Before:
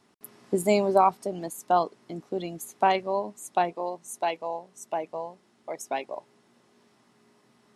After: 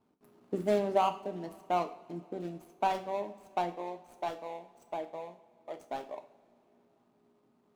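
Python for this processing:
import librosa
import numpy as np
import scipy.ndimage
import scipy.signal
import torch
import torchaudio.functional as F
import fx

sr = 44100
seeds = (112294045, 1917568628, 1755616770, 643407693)

y = scipy.signal.medfilt(x, 25)
y = fx.rev_double_slope(y, sr, seeds[0], early_s=0.44, late_s=3.4, knee_db=-22, drr_db=6.5)
y = F.gain(torch.from_numpy(y), -6.5).numpy()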